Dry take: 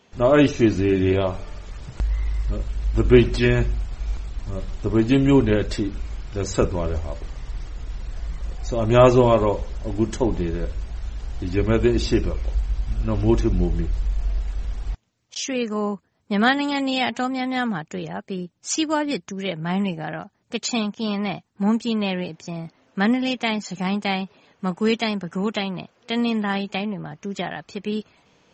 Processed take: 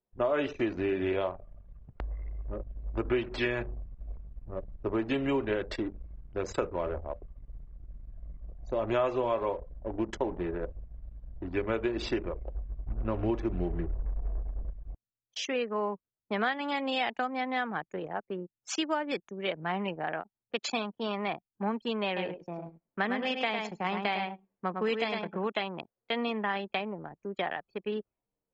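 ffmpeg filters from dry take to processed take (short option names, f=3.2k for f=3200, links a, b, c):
-filter_complex "[0:a]asettb=1/sr,asplit=3[a][b][c];[a]atrim=end=12.864[d];[b]atrim=start=12.86:end=14.7,asetpts=PTS-STARTPTS,afade=t=in:d=0.004:c=qsin,afade=t=out:st=1.836:d=0.004:c=qsin,lowshelf=f=430:g=6[e];[c]atrim=start=14.696[f];[d][e]acrossfade=d=0.004:c1=hsin:c2=qsin[g];[g][f]acrossfade=d=0.004:c1=qsin:c2=hsin,asettb=1/sr,asplit=3[h][i][j];[h]atrim=end=22.064[k];[i]atrim=start=22.06:end=25.46,asetpts=PTS-STARTPTS,afade=t=in:d=0.004:c=qsin,afade=t=out:st=3.396:d=0.004:c=qsin,aecho=1:1:104|208|312:0.531|0.133|0.0332,atrim=end_sample=149940[l];[j]atrim=start=25.456[m];[k][l]acrossfade=d=0.004:c1=hsin:c2=qsin[n];[n][m]acrossfade=d=0.004:c1=qsin:c2=hsin,anlmdn=39.8,acrossover=split=370 3600:gain=0.2 1 0.178[o][p][q];[o][p][q]amix=inputs=3:normalize=0,acompressor=threshold=-27dB:ratio=4"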